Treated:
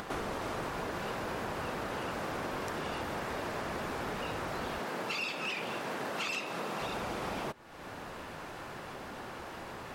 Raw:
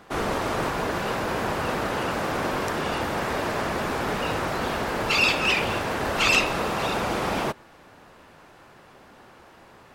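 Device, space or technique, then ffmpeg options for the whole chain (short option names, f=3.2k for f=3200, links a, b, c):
upward and downward compression: -filter_complex "[0:a]acompressor=mode=upward:threshold=-35dB:ratio=2.5,acompressor=threshold=-35dB:ratio=5,asettb=1/sr,asplit=3[a][b][c];[a]atrim=end=4.794[d];[b]atrim=start=4.79:end=6.81,asetpts=PTS-STARTPTS,afade=t=in:d=0.004:c=qsin,afade=t=out:st=2.016:d=0.004:c=qsin,highpass=f=140:w=0.5412,highpass=f=140:w=1.3066[e];[c]atrim=start=6.806[f];[d][e]acrossfade=d=0.004:c1=hsin:c2=qsin[g];[g][f]acrossfade=d=0.004:c1=qsin:c2=hsin"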